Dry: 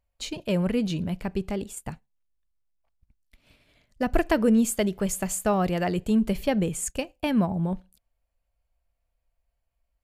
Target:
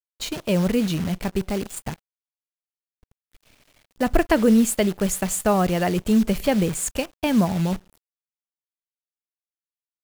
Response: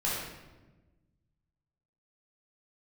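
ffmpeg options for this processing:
-af "acrusher=bits=7:dc=4:mix=0:aa=0.000001,volume=4dB"

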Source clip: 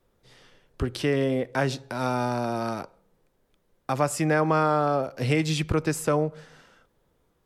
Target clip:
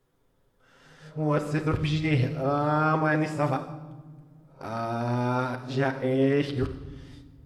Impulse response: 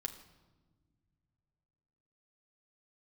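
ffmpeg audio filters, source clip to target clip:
-filter_complex "[0:a]areverse[link_01];[1:a]atrim=start_sample=2205[link_02];[link_01][link_02]afir=irnorm=-1:irlink=0,acrossover=split=4300[link_03][link_04];[link_04]acompressor=threshold=-55dB:ratio=4:attack=1:release=60[link_05];[link_03][link_05]amix=inputs=2:normalize=0"

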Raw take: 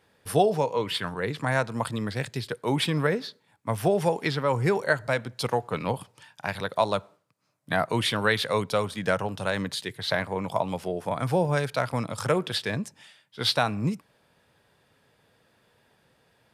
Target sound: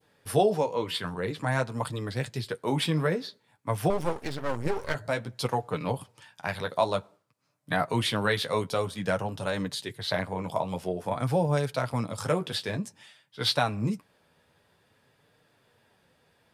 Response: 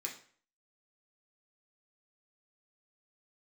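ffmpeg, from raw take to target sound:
-filter_complex "[0:a]flanger=delay=6.6:depth=5.9:regen=-34:speed=0.52:shape=sinusoidal,adynamicequalizer=threshold=0.00562:dfrequency=1800:dqfactor=0.76:tfrequency=1800:tqfactor=0.76:attack=5:release=100:ratio=0.375:range=2:mode=cutabove:tftype=bell,asettb=1/sr,asplit=3[link_01][link_02][link_03];[link_01]atrim=end=3.904[link_04];[link_02]atrim=start=3.9:end=4.95,asetpts=PTS-STARTPTS,afade=type=in:duration=0.004:curve=qsin,afade=type=out:start_time=1.046:duration=0.004:curve=qsin,aeval=exprs='max(val(0),0)':channel_layout=same[link_05];[link_03]atrim=start=4.946[link_06];[link_04][link_05]acrossfade=duration=0.004:curve1=hsin:curve2=qsin[link_07];[link_07][link_06]acrossfade=duration=0.004:curve1=qsin:curve2=hsin,volume=2.5dB"

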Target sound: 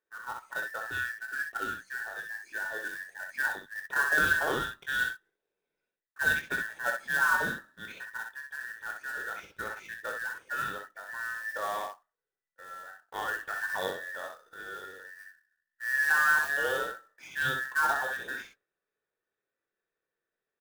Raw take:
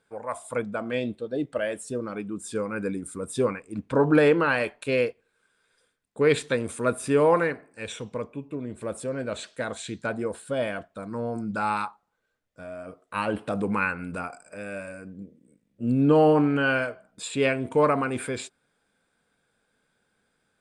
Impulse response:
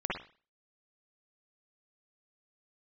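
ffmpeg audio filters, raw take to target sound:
-filter_complex "[0:a]afftfilt=real='real(if(between(b,1,1012),(2*floor((b-1)/92)+1)*92-b,b),0)':imag='imag(if(between(b,1,1012),(2*floor((b-1)/92)+1)*92-b,b),0)*if(between(b,1,1012),-1,1)':win_size=2048:overlap=0.75,lowpass=3100,agate=range=-10dB:threshold=-54dB:ratio=16:detection=peak,acrusher=bits=3:mode=log:mix=0:aa=0.000001,asplit=2[link_01][link_02];[link_02]aecho=0:1:21|63:0.398|0.562[link_03];[link_01][link_03]amix=inputs=2:normalize=0,volume=-8dB"

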